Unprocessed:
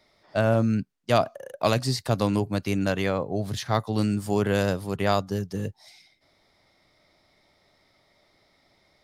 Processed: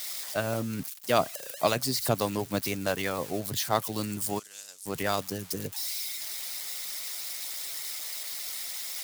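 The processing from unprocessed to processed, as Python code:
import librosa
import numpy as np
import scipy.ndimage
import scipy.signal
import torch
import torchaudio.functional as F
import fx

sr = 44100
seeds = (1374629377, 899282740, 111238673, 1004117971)

y = x + 0.5 * 10.0 ** (-23.0 / 20.0) * np.diff(np.sign(x), prepend=np.sign(x[:1]))
y = fx.hpss(y, sr, part='harmonic', gain_db=-11)
y = fx.bandpass_q(y, sr, hz=7200.0, q=2.0, at=(4.38, 4.85), fade=0.02)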